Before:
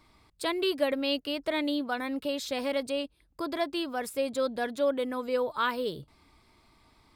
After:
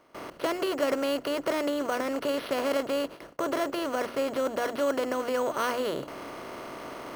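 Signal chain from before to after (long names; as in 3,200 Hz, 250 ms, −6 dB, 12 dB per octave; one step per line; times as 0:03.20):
compressor on every frequency bin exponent 0.4
bad sample-rate conversion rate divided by 6×, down filtered, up hold
high-shelf EQ 3,100 Hz −8.5 dB
mains-hum notches 60/120/180/240/300/360 Hz
noise gate with hold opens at −28 dBFS
level −2.5 dB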